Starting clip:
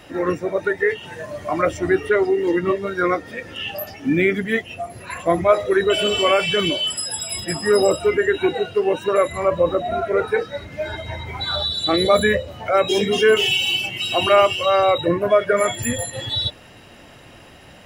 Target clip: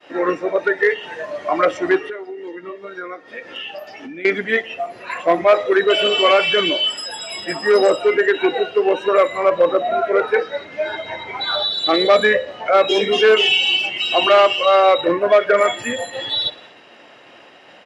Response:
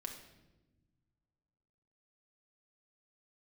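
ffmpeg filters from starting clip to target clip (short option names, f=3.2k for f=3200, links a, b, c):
-filter_complex "[0:a]agate=range=-33dB:threshold=-41dB:ratio=3:detection=peak,asettb=1/sr,asplit=3[a][b][c];[a]atrim=end=1.974[d];[b]atrim=start=1.97:end=4.25,asetpts=PTS-STARTPTS,afade=t=in:d=0.004:c=qsin,afade=t=out:st=2.276:d=0.004:c=qsin,acompressor=threshold=-31dB:ratio=12[e];[c]atrim=start=4.246[f];[d][e]acrossfade=d=0.004:c1=hsin:c2=qsin[g];[g][f]acrossfade=d=0.004:c1=qsin:c2=hsin,apsyclip=5.5dB,asoftclip=type=hard:threshold=-5dB,highpass=360,lowpass=4.3k,aecho=1:1:60|120|180|240:0.0794|0.0469|0.0277|0.0163,volume=-1dB"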